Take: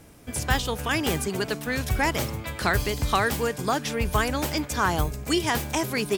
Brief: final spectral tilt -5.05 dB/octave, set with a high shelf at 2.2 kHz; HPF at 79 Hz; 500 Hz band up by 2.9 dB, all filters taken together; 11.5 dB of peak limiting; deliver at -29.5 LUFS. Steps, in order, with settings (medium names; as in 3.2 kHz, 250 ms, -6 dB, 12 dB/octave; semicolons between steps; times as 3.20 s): high-pass 79 Hz; peaking EQ 500 Hz +4 dB; treble shelf 2.2 kHz -6 dB; trim +1 dB; peak limiter -19 dBFS